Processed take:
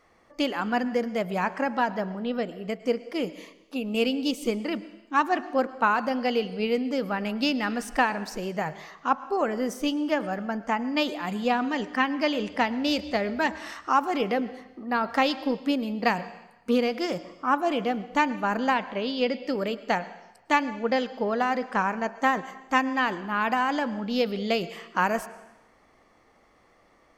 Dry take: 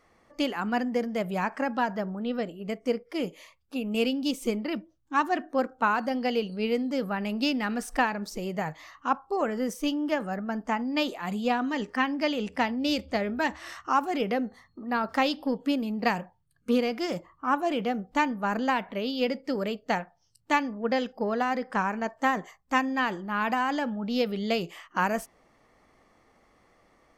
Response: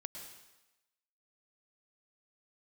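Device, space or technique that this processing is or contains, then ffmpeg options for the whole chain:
filtered reverb send: -filter_complex "[0:a]asplit=2[link_01][link_02];[link_02]highpass=220,lowpass=7700[link_03];[1:a]atrim=start_sample=2205[link_04];[link_03][link_04]afir=irnorm=-1:irlink=0,volume=-6dB[link_05];[link_01][link_05]amix=inputs=2:normalize=0,asettb=1/sr,asplit=3[link_06][link_07][link_08];[link_06]atrim=end=18.744[link_09];[link_07]atrim=start=18.74:end=19.46,asetpts=PTS-STARTPTS,afade=type=in:duration=0.004:curve=qsin,afade=type=out:start_time=0.716:duration=0.004:curve=qsin,lowpass=6900[link_10];[link_08]atrim=start=19.456[link_11];[link_09][link_10]acrossfade=duration=0.004:curve1=hsin:curve2=qsin[link_12];[link_12][link_11]acrossfade=duration=0.004:curve1=qsin:curve2=hsin"

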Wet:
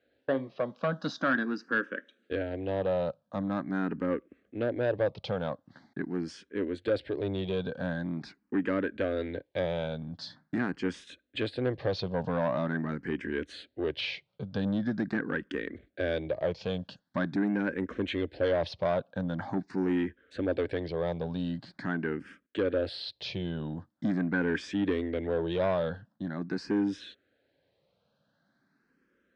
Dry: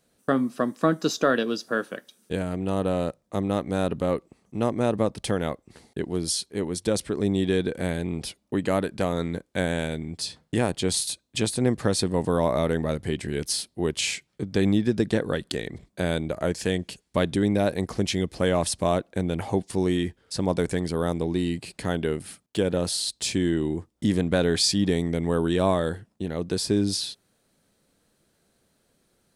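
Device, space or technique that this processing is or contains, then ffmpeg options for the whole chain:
barber-pole phaser into a guitar amplifier: -filter_complex "[0:a]asplit=2[link_01][link_02];[link_02]afreqshift=0.44[link_03];[link_01][link_03]amix=inputs=2:normalize=1,asoftclip=type=tanh:threshold=-21dB,highpass=76,equalizer=frequency=280:width_type=q:width=4:gain=6,equalizer=frequency=550:width_type=q:width=4:gain=6,equalizer=frequency=1600:width_type=q:width=4:gain=10,lowpass=frequency=4200:width=0.5412,lowpass=frequency=4200:width=1.3066,volume=-3.5dB"

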